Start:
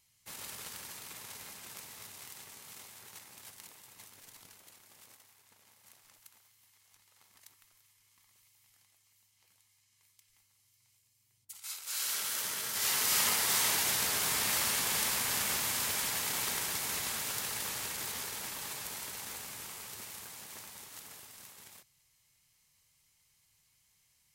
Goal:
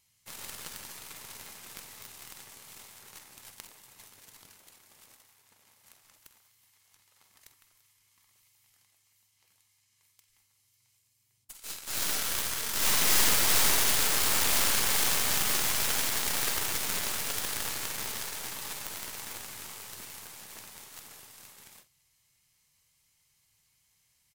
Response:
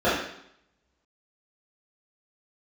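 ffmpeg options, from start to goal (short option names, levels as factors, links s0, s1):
-filter_complex "[0:a]aeval=exprs='0.251*(cos(1*acos(clip(val(0)/0.251,-1,1)))-cos(1*PI/2))+0.0891*(cos(8*acos(clip(val(0)/0.251,-1,1)))-cos(8*PI/2))':c=same,asplit=2[s0][s1];[s1]adelay=47,volume=0.224[s2];[s0][s2]amix=inputs=2:normalize=0"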